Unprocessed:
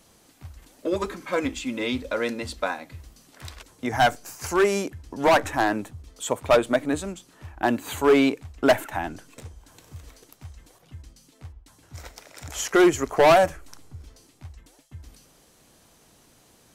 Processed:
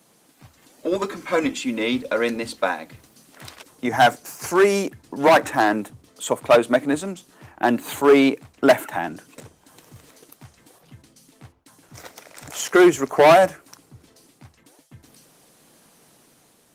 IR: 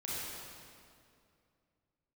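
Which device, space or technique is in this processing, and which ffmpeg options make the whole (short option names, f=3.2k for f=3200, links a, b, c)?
video call: -af "highpass=f=130:w=0.5412,highpass=f=130:w=1.3066,dynaudnorm=f=700:g=3:m=4dB,volume=1dB" -ar 48000 -c:a libopus -b:a 24k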